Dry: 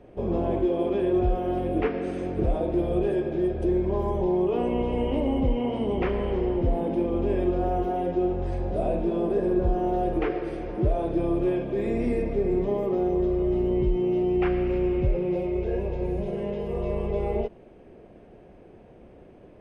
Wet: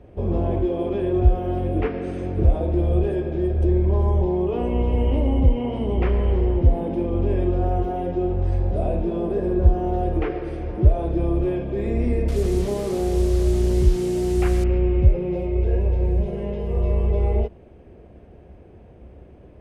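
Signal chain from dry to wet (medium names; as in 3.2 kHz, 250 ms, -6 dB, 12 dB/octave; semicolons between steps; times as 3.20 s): 12.28–14.64 s: one-bit delta coder 64 kbps, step -32 dBFS; peaking EQ 69 Hz +14.5 dB 1.3 oct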